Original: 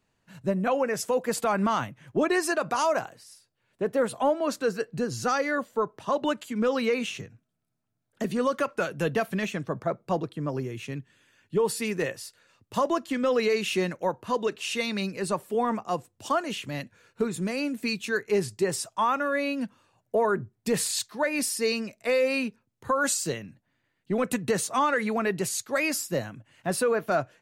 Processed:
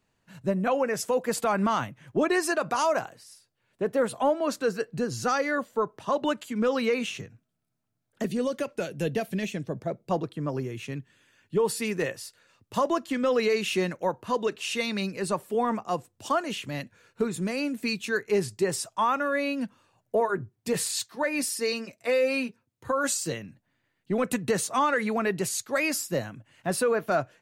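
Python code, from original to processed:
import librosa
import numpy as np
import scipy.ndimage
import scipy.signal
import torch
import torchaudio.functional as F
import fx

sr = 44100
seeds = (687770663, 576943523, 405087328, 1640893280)

y = fx.peak_eq(x, sr, hz=1200.0, db=-13.0, octaves=1.0, at=(8.27, 10.11))
y = fx.notch_comb(y, sr, f0_hz=210.0, at=(20.2, 23.32))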